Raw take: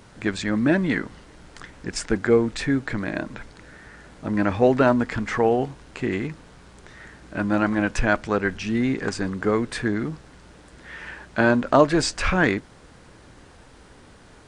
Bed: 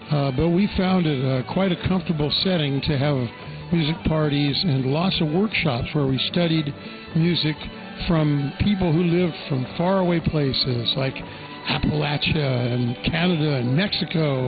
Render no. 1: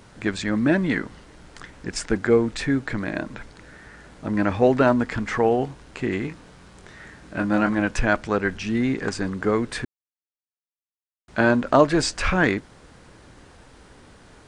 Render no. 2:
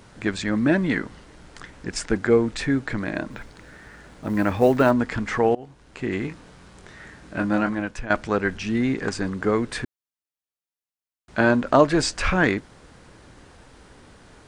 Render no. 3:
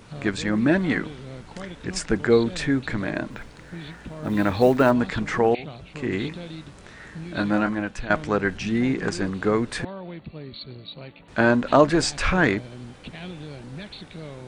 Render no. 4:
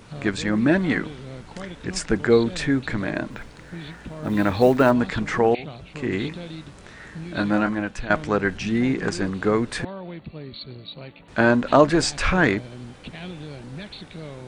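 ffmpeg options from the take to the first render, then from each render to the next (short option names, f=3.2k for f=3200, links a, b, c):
-filter_complex "[0:a]asettb=1/sr,asplit=3[a][b][c];[a]atrim=end=6.254[d];[b]atrim=start=6.25:end=7.71,asetpts=PTS-STARTPTS,afade=t=in:d=0.004:c=qsin,afade=t=out:st=1.456:d=0.004:c=qsin,asplit=2[e][f];[f]adelay=23,volume=-7dB[g];[e][g]amix=inputs=2:normalize=0,atrim=end_sample=64386[h];[c]atrim=start=7.706[i];[d][h]acrossfade=d=0.004:c1=hsin:c2=qsin[j];[j][i]acrossfade=d=0.004:c1=qsin:c2=hsin,asplit=3[k][l][m];[k]atrim=end=9.85,asetpts=PTS-STARTPTS,afade=t=out:st=9.846:d=0.004:c=hsin[n];[l]atrim=start=9.85:end=11.28,asetpts=PTS-STARTPTS,volume=0[o];[m]atrim=start=11.28,asetpts=PTS-STARTPTS,afade=t=in:d=0.004:c=hsin[p];[n][o][p]concat=n=3:v=0:a=1"
-filter_complex "[0:a]asplit=3[a][b][c];[a]afade=t=out:st=3.3:d=0.02[d];[b]acrusher=bits=8:mode=log:mix=0:aa=0.000001,afade=t=in:st=3.3:d=0.02,afade=t=out:st=4.9:d=0.02[e];[c]afade=t=in:st=4.9:d=0.02[f];[d][e][f]amix=inputs=3:normalize=0,asplit=3[g][h][i];[g]atrim=end=5.55,asetpts=PTS-STARTPTS,afade=t=out:st=5.546:d=0.004:c=hsin:silence=0.0841395[j];[h]atrim=start=5.55:end=8.1,asetpts=PTS-STARTPTS,afade=t=in:d=0.65:silence=0.0841395,afade=t=out:st=1.92:d=0.63:silence=0.199526[k];[i]atrim=start=8.1,asetpts=PTS-STARTPTS,afade=t=in:d=0.004:c=hsin:silence=0.199526[l];[j][k][l]concat=n=3:v=0:a=1"
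-filter_complex "[1:a]volume=-17dB[a];[0:a][a]amix=inputs=2:normalize=0"
-af "volume=1dB"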